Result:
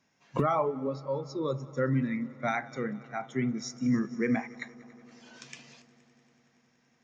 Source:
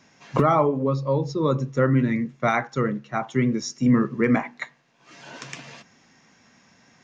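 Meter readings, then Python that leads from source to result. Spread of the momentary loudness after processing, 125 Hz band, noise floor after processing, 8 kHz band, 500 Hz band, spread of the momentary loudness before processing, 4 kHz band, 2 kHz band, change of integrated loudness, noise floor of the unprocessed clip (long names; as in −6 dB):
16 LU, −10.0 dB, −70 dBFS, can't be measured, −8.0 dB, 17 LU, −7.5 dB, −7.5 dB, −8.5 dB, −59 dBFS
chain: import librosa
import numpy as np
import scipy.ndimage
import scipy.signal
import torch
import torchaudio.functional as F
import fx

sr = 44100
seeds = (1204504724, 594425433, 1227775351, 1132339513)

y = fx.echo_heads(x, sr, ms=94, heads='second and third', feedback_pct=74, wet_db=-17.5)
y = fx.noise_reduce_blind(y, sr, reduce_db=8)
y = F.gain(torch.from_numpy(y), -7.5).numpy()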